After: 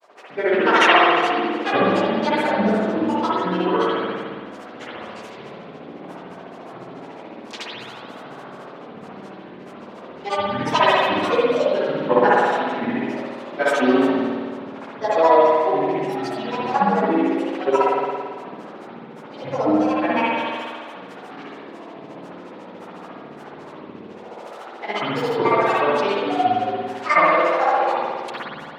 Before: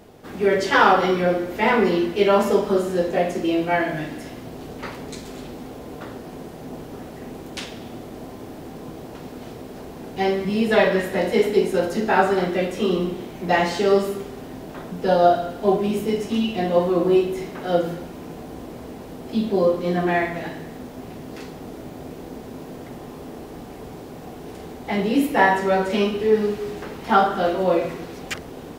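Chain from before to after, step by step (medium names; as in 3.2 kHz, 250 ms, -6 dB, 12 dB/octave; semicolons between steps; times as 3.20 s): median filter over 3 samples; high-pass 140 Hz; three-band isolator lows -21 dB, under 330 Hz, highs -19 dB, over 6.7 kHz; granulator, grains 14 per s, pitch spread up and down by 12 st; spring tank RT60 1.7 s, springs 55 ms, chirp 40 ms, DRR -6.5 dB; trim -1.5 dB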